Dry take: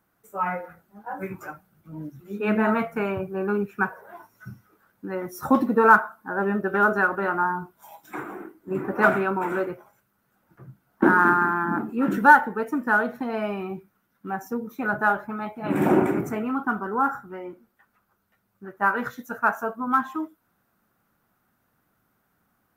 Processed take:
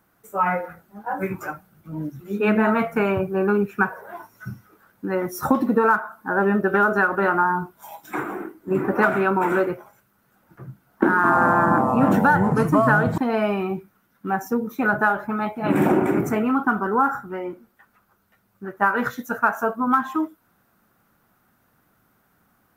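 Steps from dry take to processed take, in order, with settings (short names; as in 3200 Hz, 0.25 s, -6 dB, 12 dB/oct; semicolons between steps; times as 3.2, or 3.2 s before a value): compressor 8:1, threshold -21 dBFS, peak gain reduction 13 dB; 11.12–13.18 echoes that change speed 0.115 s, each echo -5 st, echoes 2; gain +6.5 dB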